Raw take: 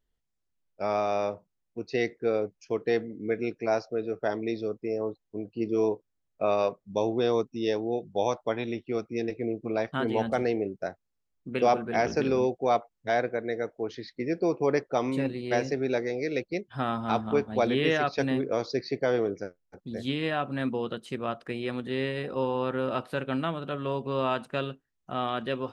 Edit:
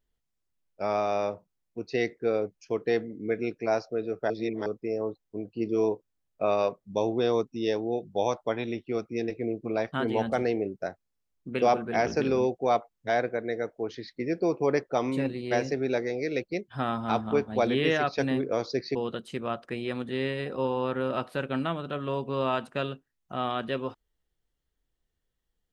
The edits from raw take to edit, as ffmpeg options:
-filter_complex "[0:a]asplit=4[a][b][c][d];[a]atrim=end=4.302[e];[b]atrim=start=4.298:end=4.662,asetpts=PTS-STARTPTS,areverse[f];[c]atrim=start=4.658:end=18.952[g];[d]atrim=start=20.728[h];[e][f]acrossfade=d=0.004:c1=hsin:c2=hsin[i];[i][g]acrossfade=d=0.004:c1=hsin:c2=hsin[j];[j][h]acrossfade=d=0.004:c1=hsin:c2=hsin"

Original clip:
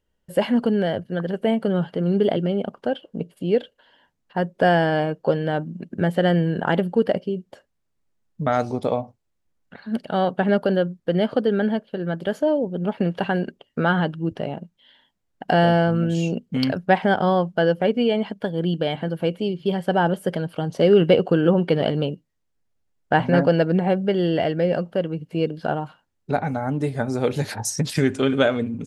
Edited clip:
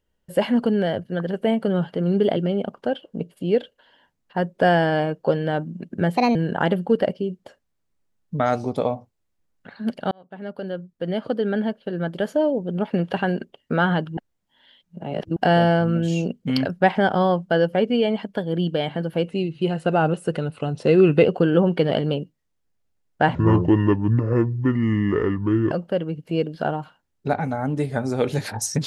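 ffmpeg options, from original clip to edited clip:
-filter_complex "[0:a]asplit=10[a][b][c][d][e][f][g][h][i][j];[a]atrim=end=6.174[k];[b]atrim=start=6.17:end=6.42,asetpts=PTS-STARTPTS,asetrate=60417,aresample=44100,atrim=end_sample=8047,asetpts=PTS-STARTPTS[l];[c]atrim=start=6.416:end=10.18,asetpts=PTS-STARTPTS,afade=t=out:st=3.76:d=0.004:c=hsin[m];[d]atrim=start=10.18:end=14.242,asetpts=PTS-STARTPTS,afade=t=in:d=1.8[n];[e]atrim=start=14.238:end=15.432,asetpts=PTS-STARTPTS,areverse[o];[f]atrim=start=15.428:end=19.354[p];[g]atrim=start=19.35:end=21.16,asetpts=PTS-STARTPTS,asetrate=40572,aresample=44100[q];[h]atrim=start=21.156:end=23.264[r];[i]atrim=start=23.26:end=24.75,asetpts=PTS-STARTPTS,asetrate=27783,aresample=44100[s];[j]atrim=start=24.746[t];[k][l]acrossfade=d=0.004:c1=hsin:c2=hsin[u];[m][n]concat=n=2:v=0:a=1[v];[u][v]acrossfade=d=0.004:c1=hsin:c2=hsin[w];[w][o]acrossfade=d=0.004:c1=hsin:c2=hsin[x];[x][p]acrossfade=d=0.004:c1=hsin:c2=hsin[y];[y][q]acrossfade=d=0.004:c1=hsin:c2=hsin[z];[z][r]acrossfade=d=0.004:c1=hsin:c2=hsin[aa];[aa][s]acrossfade=d=0.004:c1=hsin:c2=hsin[ab];[ab][t]acrossfade=d=0.004:c1=hsin:c2=hsin"

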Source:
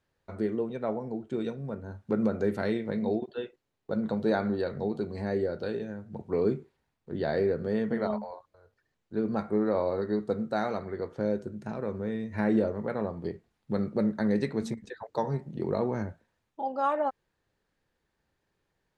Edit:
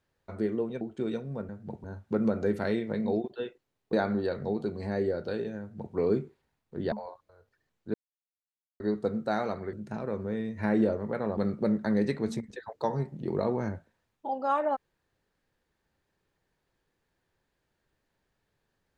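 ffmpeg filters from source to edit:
-filter_complex "[0:a]asplit=10[a][b][c][d][e][f][g][h][i][j];[a]atrim=end=0.812[k];[b]atrim=start=1.138:end=1.822[l];[c]atrim=start=5.948:end=6.302[m];[d]atrim=start=1.818:end=3.912[n];[e]atrim=start=4.278:end=7.272[o];[f]atrim=start=8.168:end=9.19,asetpts=PTS-STARTPTS,afade=t=out:st=1.018:d=0.004:c=hsin[p];[g]atrim=start=9.19:end=10.05,asetpts=PTS-STARTPTS,volume=0[q];[h]atrim=start=10.05:end=10.982,asetpts=PTS-STARTPTS,afade=t=in:d=0.004:c=hsin[r];[i]atrim=start=11.478:end=13.122[s];[j]atrim=start=13.708[t];[k][l]acrossfade=d=0.004:c1=hsin:c2=hsin[u];[u][m]acrossfade=d=0.004:c1=hsin:c2=hsin[v];[v][n]acrossfade=d=0.004:c1=hsin:c2=hsin[w];[w][o]acrossfade=d=0.004:c1=hsin:c2=hsin[x];[p][q][r]concat=n=3:v=0:a=1[y];[x][y]acrossfade=d=0.004:c1=hsin:c2=hsin[z];[z][s]acrossfade=d=0.004:c1=hsin:c2=hsin[aa];[aa][t]acrossfade=d=0.004:c1=hsin:c2=hsin"

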